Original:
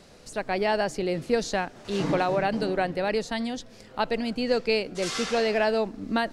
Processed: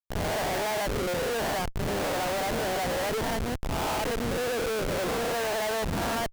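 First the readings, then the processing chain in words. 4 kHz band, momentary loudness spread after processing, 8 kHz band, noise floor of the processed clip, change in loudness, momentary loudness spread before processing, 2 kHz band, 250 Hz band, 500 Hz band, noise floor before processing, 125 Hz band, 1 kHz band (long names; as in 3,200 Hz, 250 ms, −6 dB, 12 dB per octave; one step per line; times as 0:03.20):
−0.5 dB, 2 LU, +4.5 dB, −31 dBFS, −2.0 dB, 7 LU, −1.0 dB, −4.5 dB, −3.0 dB, −50 dBFS, +2.0 dB, −0.5 dB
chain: peak hold with a rise ahead of every peak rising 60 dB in 1.20 s
three-way crossover with the lows and the highs turned down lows −15 dB, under 510 Hz, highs −22 dB, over 2,100 Hz
comparator with hysteresis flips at −33 dBFS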